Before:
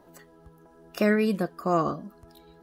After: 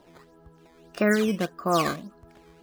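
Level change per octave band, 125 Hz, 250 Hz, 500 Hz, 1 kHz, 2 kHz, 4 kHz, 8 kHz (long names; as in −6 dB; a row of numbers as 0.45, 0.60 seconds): 0.0, 0.0, +0.5, +1.5, +3.5, +7.0, +11.0 decibels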